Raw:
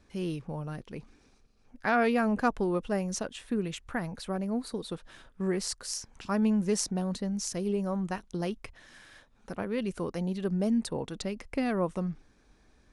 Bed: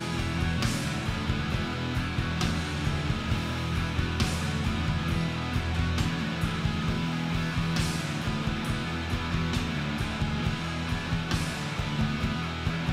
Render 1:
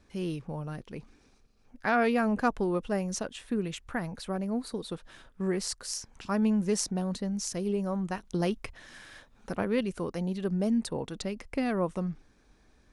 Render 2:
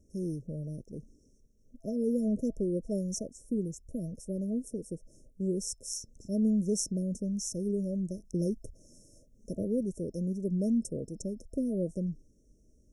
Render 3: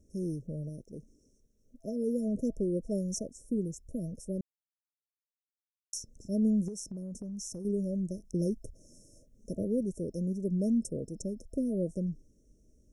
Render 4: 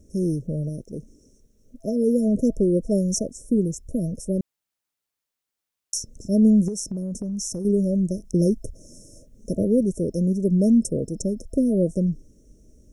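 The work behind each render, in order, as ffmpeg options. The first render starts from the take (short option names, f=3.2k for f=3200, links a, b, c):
-filter_complex "[0:a]asplit=3[a][b][c];[a]atrim=end=8.252[d];[b]atrim=start=8.248:end=9.812,asetpts=PTS-STARTPTS,volume=4dB[e];[c]atrim=start=9.808[f];[d][e]acrossfade=d=0.004:c1=hsin:c2=hsin[g];[g][f]acrossfade=d=0.004:c1=hsin:c2=hsin"
-af "afftfilt=real='re*(1-between(b*sr/4096,660,5300))':imag='im*(1-between(b*sr/4096,660,5300))':win_size=4096:overlap=0.75,equalizer=f=1.3k:t=o:w=1.9:g=-11.5"
-filter_complex "[0:a]asettb=1/sr,asplit=3[a][b][c];[a]atrim=end=0.694[d];[b]atrim=start=0.69:end=2.35,asetpts=PTS-STARTPTS,afade=t=in:d=0.004:c=qsin,afade=t=out:st=1.656:d=0.004:c=qsin,lowshelf=f=240:g=-5[e];[c]atrim=start=2.346[f];[d][e]acrossfade=d=0.004:c1=hsin:c2=qsin[g];[g][f]acrossfade=d=0.004:c1=qsin:c2=hsin,asettb=1/sr,asplit=3[h][i][j];[h]atrim=end=6.684[k];[i]atrim=start=6.68:end=7.65,asetpts=PTS-STARTPTS,afade=t=in:d=0.004:c=qsin,afade=t=out:st=0.966:d=0.004:c=qsin,acompressor=threshold=-36dB:ratio=12:attack=3.2:release=140:knee=1:detection=peak[l];[j]atrim=start=7.646[m];[k][l]acrossfade=d=0.004:c1=hsin:c2=qsin[n];[n][m]acrossfade=d=0.004:c1=qsin:c2=hsin,asplit=3[o][p][q];[o]atrim=end=4.41,asetpts=PTS-STARTPTS,afade=t=out:st=4.406:d=0.004:c=hsin[r];[p]atrim=start=4.41:end=5.93,asetpts=PTS-STARTPTS,volume=0[s];[q]atrim=start=5.93,asetpts=PTS-STARTPTS,afade=t=in:d=0.004:c=hsin[t];[r][s][t]concat=n=3:v=0:a=1"
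-af "volume=11dB"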